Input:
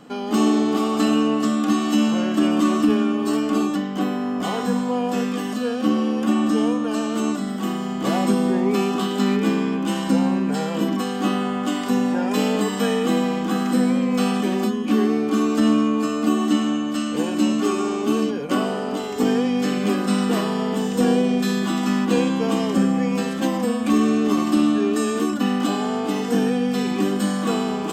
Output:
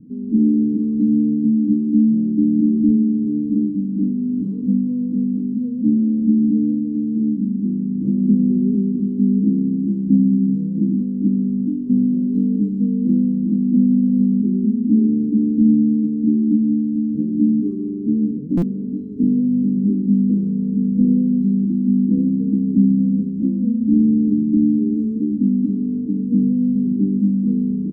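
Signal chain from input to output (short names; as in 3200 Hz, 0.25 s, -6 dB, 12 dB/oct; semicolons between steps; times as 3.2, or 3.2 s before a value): inverse Chebyshev low-pass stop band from 680 Hz, stop band 50 dB; outdoor echo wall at 190 m, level -17 dB; stuck buffer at 18.57, samples 256, times 8; gain +6.5 dB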